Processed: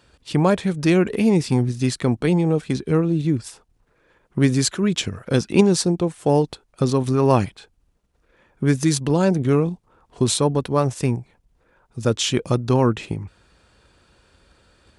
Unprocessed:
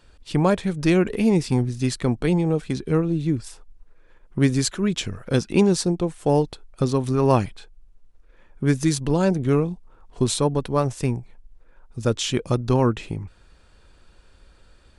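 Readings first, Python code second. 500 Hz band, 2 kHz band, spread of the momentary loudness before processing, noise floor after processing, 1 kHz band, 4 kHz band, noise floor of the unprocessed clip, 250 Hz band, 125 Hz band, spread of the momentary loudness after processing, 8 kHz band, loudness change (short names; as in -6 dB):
+2.0 dB, +2.0 dB, 9 LU, -64 dBFS, +2.0 dB, +3.5 dB, -54 dBFS, +2.0 dB, +2.0 dB, 9 LU, +3.5 dB, +2.0 dB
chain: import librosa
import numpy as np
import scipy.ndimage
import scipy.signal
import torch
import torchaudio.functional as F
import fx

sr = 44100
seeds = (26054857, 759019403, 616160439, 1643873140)

p1 = scipy.signal.sosfilt(scipy.signal.butter(2, 72.0, 'highpass', fs=sr, output='sos'), x)
p2 = fx.level_steps(p1, sr, step_db=14)
y = p1 + (p2 * 10.0 ** (-2.5 / 20.0))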